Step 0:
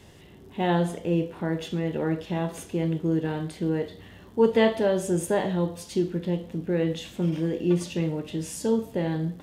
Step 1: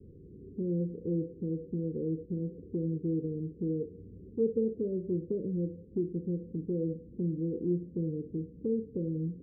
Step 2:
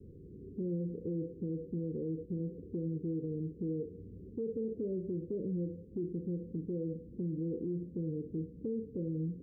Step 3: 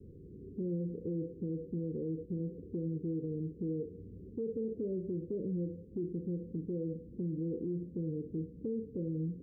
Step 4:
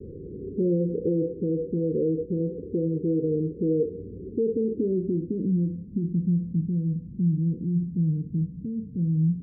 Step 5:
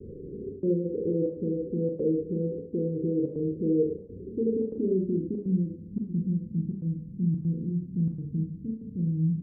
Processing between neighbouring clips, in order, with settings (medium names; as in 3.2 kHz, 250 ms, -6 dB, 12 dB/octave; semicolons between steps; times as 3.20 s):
steep low-pass 500 Hz 96 dB/octave; compression 1.5:1, threshold -40 dBFS, peak gain reduction 9 dB
peak limiter -29.5 dBFS, peak gain reduction 10.5 dB
no audible change
gain riding within 4 dB 2 s; low-pass sweep 500 Hz -> 170 Hz, 3.89–6.36 s; trim +7.5 dB
trance gate "xxxxx.xxxxxx." 143 bpm -60 dB; Schroeder reverb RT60 0.44 s, combs from 28 ms, DRR 1.5 dB; trim -3.5 dB